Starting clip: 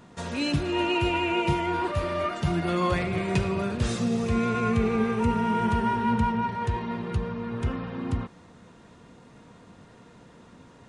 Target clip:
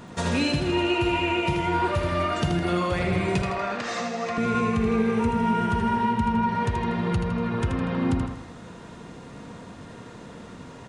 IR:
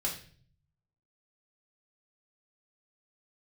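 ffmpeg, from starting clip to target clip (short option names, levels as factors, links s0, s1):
-filter_complex "[0:a]acompressor=threshold=0.0316:ratio=6,asettb=1/sr,asplit=3[s0][s1][s2];[s0]atrim=end=3.424[s3];[s1]atrim=start=3.42:end=4.38,asetpts=PTS-STARTPTS,afade=t=in:d=0.004:c=qsin,afade=t=out:st=0.956:d=0.004:c=qsin,highpass=370,equalizer=f=380:t=q:w=4:g=-8,equalizer=f=720:t=q:w=4:g=7,equalizer=f=1200:t=q:w=4:g=5,equalizer=f=1900:t=q:w=4:g=7,equalizer=f=3400:t=q:w=4:g=-3,lowpass=f=6600:w=0.5412,lowpass=f=6600:w=1.3066[s4];[s2]atrim=start=4.376[s5];[s3][s4]acrossfade=d=0.004:c1=hsin:c2=qsin[s6];[s6][s5]acrossfade=d=0.004:c1=qsin:c2=hsin,asplit=2[s7][s8];[s8]aecho=0:1:80|160|240|320|400|480:0.501|0.231|0.106|0.0488|0.0224|0.0103[s9];[s7][s9]amix=inputs=2:normalize=0,volume=2.51"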